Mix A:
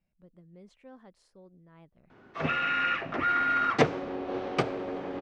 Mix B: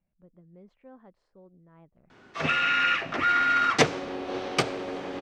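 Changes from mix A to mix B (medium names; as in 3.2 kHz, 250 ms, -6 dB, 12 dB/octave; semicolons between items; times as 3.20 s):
speech: add low-pass 1.2 kHz 12 dB/octave; master: remove low-pass 1.3 kHz 6 dB/octave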